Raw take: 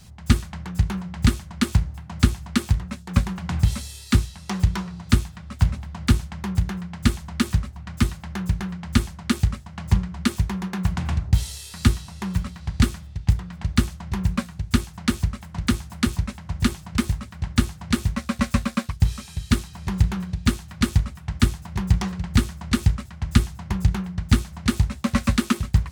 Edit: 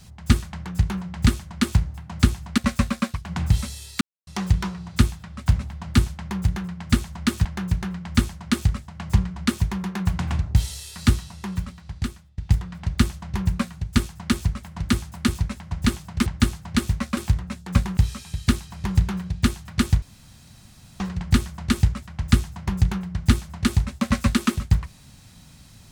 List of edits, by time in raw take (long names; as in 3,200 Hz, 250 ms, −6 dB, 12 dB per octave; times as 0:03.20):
0:02.58–0:03.38: swap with 0:18.33–0:19.00
0:04.14–0:04.40: silence
0:07.58–0:08.23: remove
0:11.92–0:13.16: fade out, to −19 dB
0:17.04–0:17.42: remove
0:21.05–0:22.03: fill with room tone